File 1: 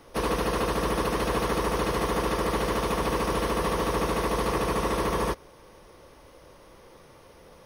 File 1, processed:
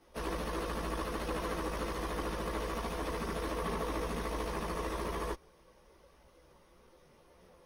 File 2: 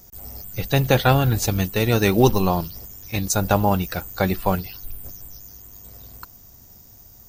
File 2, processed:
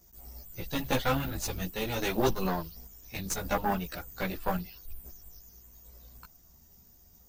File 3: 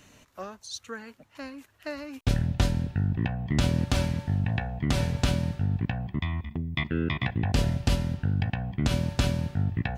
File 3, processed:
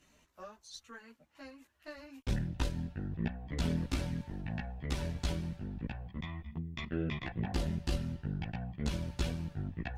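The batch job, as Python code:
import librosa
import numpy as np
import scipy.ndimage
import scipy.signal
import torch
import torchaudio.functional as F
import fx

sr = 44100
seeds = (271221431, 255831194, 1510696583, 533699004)

y = fx.cheby_harmonics(x, sr, harmonics=(2, 4, 6, 8), levels_db=(-7, -17, -13, -31), full_scale_db=-1.0)
y = fx.chorus_voices(y, sr, voices=6, hz=0.56, base_ms=15, depth_ms=3.3, mix_pct=55)
y = y * 10.0 ** (-8.0 / 20.0)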